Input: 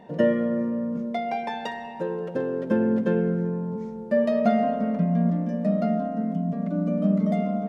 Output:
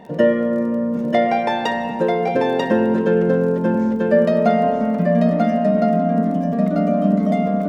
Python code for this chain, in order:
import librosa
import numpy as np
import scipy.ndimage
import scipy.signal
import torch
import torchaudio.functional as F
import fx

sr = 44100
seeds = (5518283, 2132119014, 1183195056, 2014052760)

p1 = fx.dynamic_eq(x, sr, hz=160.0, q=1.2, threshold_db=-34.0, ratio=4.0, max_db=-6)
p2 = fx.rider(p1, sr, range_db=10, speed_s=0.5)
p3 = p1 + F.gain(torch.from_numpy(p2), 0.0).numpy()
p4 = fx.dmg_crackle(p3, sr, seeds[0], per_s=15.0, level_db=-36.0)
p5 = p4 + 10.0 ** (-3.5 / 20.0) * np.pad(p4, (int(940 * sr / 1000.0), 0))[:len(p4)]
y = F.gain(torch.from_numpy(p5), 2.0).numpy()